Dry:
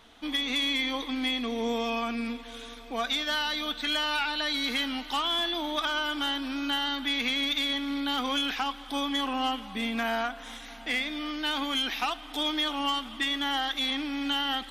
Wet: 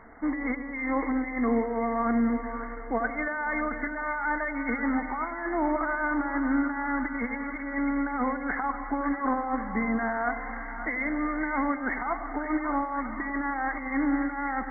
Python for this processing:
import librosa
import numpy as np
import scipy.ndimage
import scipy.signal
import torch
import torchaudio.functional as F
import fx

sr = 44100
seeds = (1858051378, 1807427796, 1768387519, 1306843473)

y = fx.over_compress(x, sr, threshold_db=-31.0, ratio=-0.5)
y = fx.brickwall_lowpass(y, sr, high_hz=2200.0)
y = fx.echo_split(y, sr, split_hz=820.0, low_ms=94, high_ms=542, feedback_pct=52, wet_db=-9.5)
y = F.gain(torch.from_numpy(y), 5.0).numpy()